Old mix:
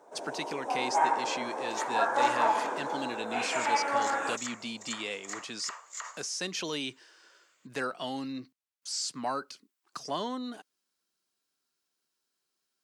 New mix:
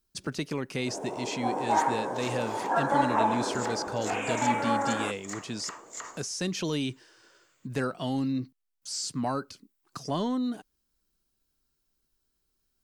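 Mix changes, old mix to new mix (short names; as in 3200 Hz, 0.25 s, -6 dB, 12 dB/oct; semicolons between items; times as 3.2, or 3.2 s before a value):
first sound: entry +0.75 s; master: remove weighting filter A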